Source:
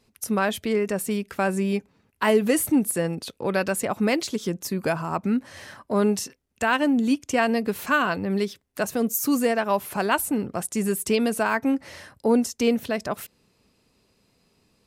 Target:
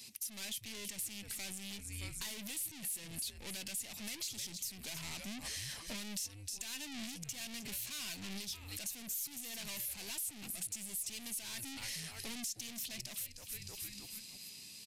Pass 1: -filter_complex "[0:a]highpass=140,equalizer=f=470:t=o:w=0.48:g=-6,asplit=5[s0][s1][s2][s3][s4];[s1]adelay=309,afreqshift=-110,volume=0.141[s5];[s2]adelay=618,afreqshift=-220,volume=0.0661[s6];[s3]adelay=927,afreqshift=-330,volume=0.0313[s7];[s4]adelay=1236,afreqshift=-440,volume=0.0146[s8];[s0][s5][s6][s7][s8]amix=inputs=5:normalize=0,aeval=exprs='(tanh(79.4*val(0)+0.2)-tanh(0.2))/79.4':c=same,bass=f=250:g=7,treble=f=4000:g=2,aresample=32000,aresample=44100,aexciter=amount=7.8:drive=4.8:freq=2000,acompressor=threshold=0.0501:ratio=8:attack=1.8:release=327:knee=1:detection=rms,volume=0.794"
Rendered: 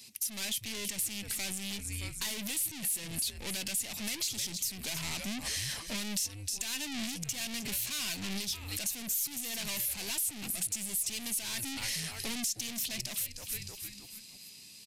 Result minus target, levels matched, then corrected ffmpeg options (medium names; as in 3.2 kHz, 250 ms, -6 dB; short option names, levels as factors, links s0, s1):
compression: peak gain reduction -7.5 dB
-filter_complex "[0:a]highpass=140,equalizer=f=470:t=o:w=0.48:g=-6,asplit=5[s0][s1][s2][s3][s4];[s1]adelay=309,afreqshift=-110,volume=0.141[s5];[s2]adelay=618,afreqshift=-220,volume=0.0661[s6];[s3]adelay=927,afreqshift=-330,volume=0.0313[s7];[s4]adelay=1236,afreqshift=-440,volume=0.0146[s8];[s0][s5][s6][s7][s8]amix=inputs=5:normalize=0,aeval=exprs='(tanh(79.4*val(0)+0.2)-tanh(0.2))/79.4':c=same,bass=f=250:g=7,treble=f=4000:g=2,aresample=32000,aresample=44100,aexciter=amount=7.8:drive=4.8:freq=2000,acompressor=threshold=0.0188:ratio=8:attack=1.8:release=327:knee=1:detection=rms,volume=0.794"